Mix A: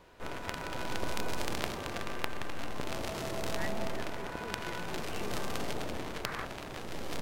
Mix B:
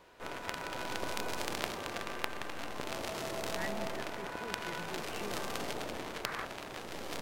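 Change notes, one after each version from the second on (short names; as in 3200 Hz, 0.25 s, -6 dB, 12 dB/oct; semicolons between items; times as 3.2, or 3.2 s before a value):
background: add low shelf 190 Hz -9.5 dB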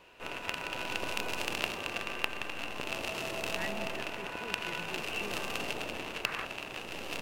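master: add bell 2700 Hz +14.5 dB 0.25 oct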